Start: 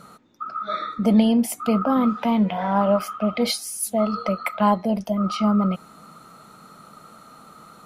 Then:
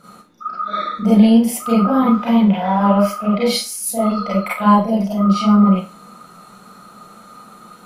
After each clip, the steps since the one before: Schroeder reverb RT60 0.31 s, combs from 31 ms, DRR -8.5 dB; gain -4.5 dB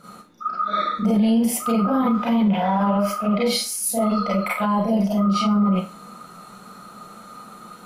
limiter -12.5 dBFS, peak gain reduction 11.5 dB

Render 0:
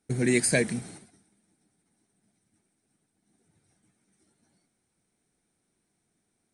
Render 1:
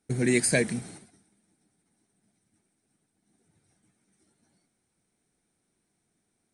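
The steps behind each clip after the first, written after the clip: nothing audible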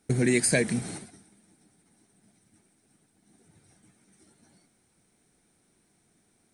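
compressor 2:1, threshold -35 dBFS, peak gain reduction 9 dB; gain +8.5 dB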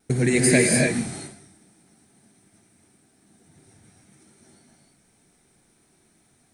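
vibrato 0.54 Hz 12 cents; non-linear reverb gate 0.32 s rising, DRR -1.5 dB; gain +2.5 dB

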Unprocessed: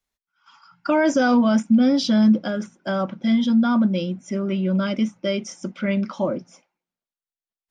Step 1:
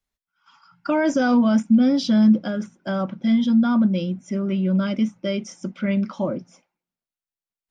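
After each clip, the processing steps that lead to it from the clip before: tone controls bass +5 dB, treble -1 dB; gain -2.5 dB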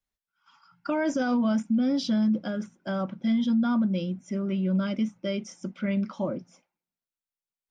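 limiter -13.5 dBFS, peak gain reduction 5 dB; gain -5 dB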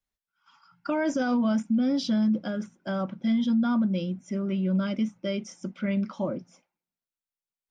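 nothing audible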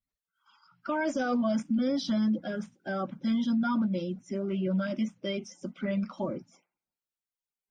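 bin magnitudes rounded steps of 30 dB; gain -2.5 dB

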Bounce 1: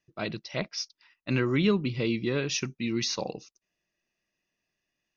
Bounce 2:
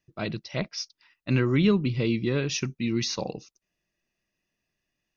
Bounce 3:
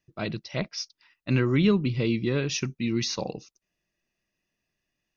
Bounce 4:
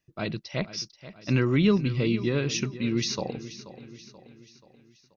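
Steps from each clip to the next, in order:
low shelf 190 Hz +7.5 dB
nothing audible
feedback echo 0.482 s, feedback 51%, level -15 dB

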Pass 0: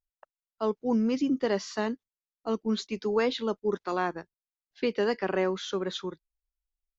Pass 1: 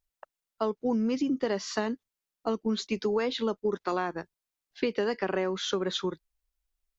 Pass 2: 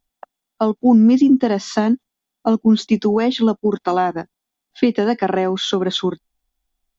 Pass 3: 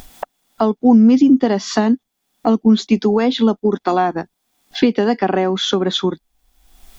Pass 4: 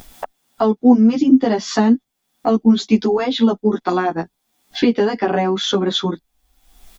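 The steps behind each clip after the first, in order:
compressor, threshold -31 dBFS, peak gain reduction 10 dB; gain +6 dB
small resonant body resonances 240/740/3400 Hz, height 11 dB, ringing for 25 ms; gain +6.5 dB
upward compressor, threshold -17 dBFS; gain +1.5 dB
endless flanger 11 ms +2.7 Hz; gain +2.5 dB

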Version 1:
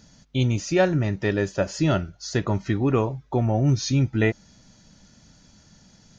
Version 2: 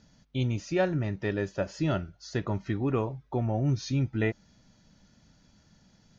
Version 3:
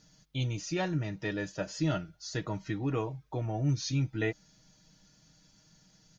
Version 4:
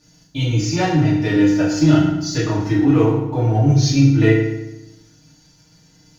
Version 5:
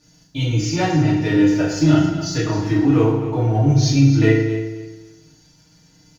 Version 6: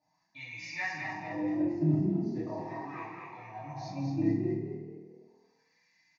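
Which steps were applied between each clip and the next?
Bessel low-pass 4600 Hz, order 2; gain -6.5 dB
high shelf 3700 Hz +11.5 dB; comb 6.4 ms; gain -5.5 dB
sample leveller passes 1; FDN reverb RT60 0.92 s, low-frequency decay 1.3×, high-frequency decay 0.8×, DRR -7.5 dB; gain +2.5 dB
feedback echo 0.265 s, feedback 23%, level -12.5 dB; gain -1 dB
wah 0.38 Hz 220–2100 Hz, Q 3.2; fixed phaser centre 2100 Hz, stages 8; frequency-shifting echo 0.216 s, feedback 31%, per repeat +40 Hz, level -5 dB; gain -1 dB

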